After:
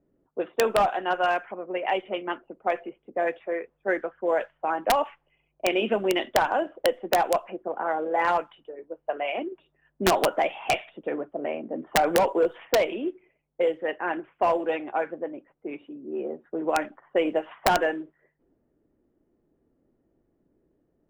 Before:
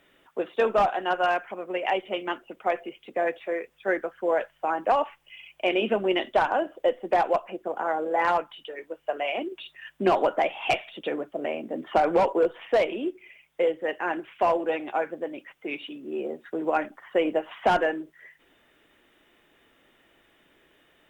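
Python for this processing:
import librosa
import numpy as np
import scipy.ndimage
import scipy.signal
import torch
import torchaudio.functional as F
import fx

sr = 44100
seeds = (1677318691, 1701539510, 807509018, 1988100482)

y = fx.env_lowpass(x, sr, base_hz=330.0, full_db=-19.5)
y = (np.mod(10.0 ** (12.0 / 20.0) * y + 1.0, 2.0) - 1.0) / 10.0 ** (12.0 / 20.0)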